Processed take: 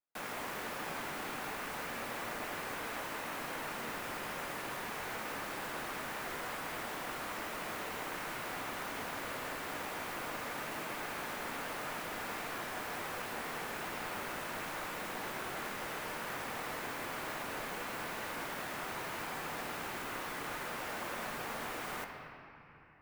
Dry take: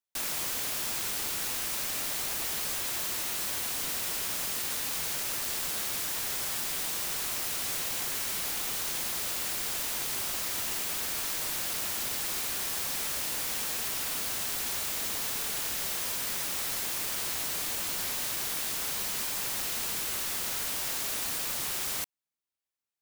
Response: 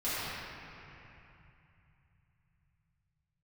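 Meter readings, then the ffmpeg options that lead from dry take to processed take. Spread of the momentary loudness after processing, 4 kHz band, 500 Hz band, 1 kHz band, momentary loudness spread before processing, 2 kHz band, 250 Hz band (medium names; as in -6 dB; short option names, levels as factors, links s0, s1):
0 LU, -11.5 dB, +2.0 dB, +2.5 dB, 0 LU, -1.0 dB, +1.5 dB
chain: -filter_complex "[0:a]acrossover=split=220 2200:gain=0.2 1 0.112[s0][s1][s2];[s0][s1][s2]amix=inputs=3:normalize=0,afreqshift=-62,asplit=2[s3][s4];[1:a]atrim=start_sample=2205[s5];[s4][s5]afir=irnorm=-1:irlink=0,volume=0.266[s6];[s3][s6]amix=inputs=2:normalize=0"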